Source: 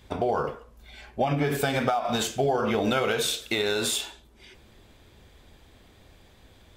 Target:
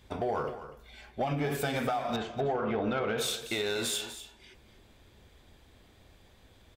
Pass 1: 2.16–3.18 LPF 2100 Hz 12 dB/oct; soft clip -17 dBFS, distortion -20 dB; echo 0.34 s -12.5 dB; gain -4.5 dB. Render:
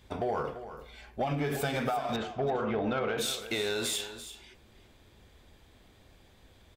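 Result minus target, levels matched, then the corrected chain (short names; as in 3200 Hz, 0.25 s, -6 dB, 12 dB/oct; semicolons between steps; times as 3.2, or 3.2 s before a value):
echo 95 ms late
2.16–3.18 LPF 2100 Hz 12 dB/oct; soft clip -17 dBFS, distortion -20 dB; echo 0.245 s -12.5 dB; gain -4.5 dB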